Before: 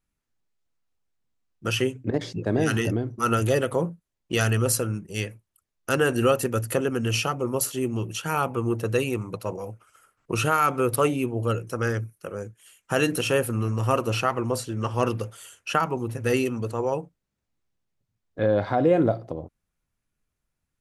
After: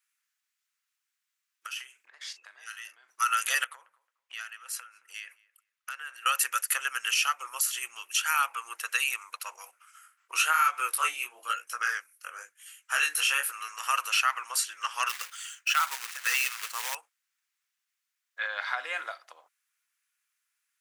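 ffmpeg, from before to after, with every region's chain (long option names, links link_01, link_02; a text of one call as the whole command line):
ffmpeg -i in.wav -filter_complex "[0:a]asettb=1/sr,asplit=3[link_01][link_02][link_03];[link_01]atrim=end=1.664[link_04];[link_02]atrim=start=1.66:end=3.09,asetpts=PTS-STARTPTS,afade=type=in:duration=0.004:curve=qsin,afade=type=out:start_time=1.426:duration=0.004:curve=qsin,acompressor=threshold=-37dB:ratio=16:attack=3.2:release=140:knee=1:detection=peak,asplit=2[link_05][link_06];[link_06]adelay=40,volume=-11.5dB[link_07];[link_05][link_07]amix=inputs=2:normalize=0,atrim=end_sample=63063[link_08];[link_03]atrim=start=3.086[link_09];[link_04][link_08]acrossfade=duration=0.004:curve1=hsin:curve2=qsin[link_10];[link_10][link_09]acrossfade=duration=0.004:curve1=qsin:curve2=hsin,asettb=1/sr,asplit=3[link_11][link_12][link_13];[link_11]atrim=end=3.644[link_14];[link_12]atrim=start=3.64:end=6.26,asetpts=PTS-STARTPTS,afade=type=in:duration=0.004:curve=qsin,afade=type=out:start_time=2.616:duration=0.004:curve=qsin,bass=frequency=250:gain=1,treble=frequency=4000:gain=-8,acompressor=threshold=-35dB:ratio=10:attack=3.2:release=140:knee=1:detection=peak,asplit=2[link_15][link_16];[link_16]adelay=220,lowpass=frequency=1500:poles=1,volume=-20dB,asplit=2[link_17][link_18];[link_18]adelay=220,lowpass=frequency=1500:poles=1,volume=0.27[link_19];[link_15][link_17][link_19]amix=inputs=3:normalize=0,atrim=end_sample=115542[link_20];[link_13]atrim=start=6.256[link_21];[link_14][link_20]acrossfade=duration=0.004:curve1=hsin:curve2=qsin[link_22];[link_22][link_21]acrossfade=duration=0.004:curve1=qsin:curve2=hsin,asettb=1/sr,asplit=3[link_23][link_24][link_25];[link_23]atrim=end=9.714[link_26];[link_24]atrim=start=9.71:end=13.52,asetpts=PTS-STARTPTS,afade=type=in:duration=0.004:curve=qsin,afade=type=out:start_time=3.806:duration=0.004:curve=qsin,lowshelf=frequency=470:gain=12,flanger=delay=16.5:depth=7.9:speed=1[link_27];[link_25]atrim=start=13.516[link_28];[link_26][link_27]acrossfade=duration=0.004:curve1=hsin:curve2=qsin[link_29];[link_29][link_28]acrossfade=duration=0.004:curve1=qsin:curve2=hsin,asettb=1/sr,asplit=3[link_30][link_31][link_32];[link_30]atrim=end=15.094[link_33];[link_31]atrim=start=15.09:end=16.95,asetpts=PTS-STARTPTS,afade=type=in:duration=0.004:curve=qsin,afade=type=out:start_time=1.856:duration=0.004:curve=qsin,lowpass=frequency=8000:width=0.5412,lowpass=frequency=8000:width=1.3066,acrusher=bits=3:mode=log:mix=0:aa=0.000001,volume=16.5dB,asoftclip=hard,volume=-16.5dB[link_34];[link_32]atrim=start=16.946[link_35];[link_33][link_34]acrossfade=duration=0.004:curve1=hsin:curve2=qsin[link_36];[link_36][link_35]acrossfade=duration=0.004:curve1=qsin:curve2=hsin,highpass=frequency=1400:width=0.5412,highpass=frequency=1400:width=1.3066,equalizer=frequency=4000:width_type=o:width=0.77:gain=-3,alimiter=limit=-22dB:level=0:latency=1:release=132,volume=8dB" out.wav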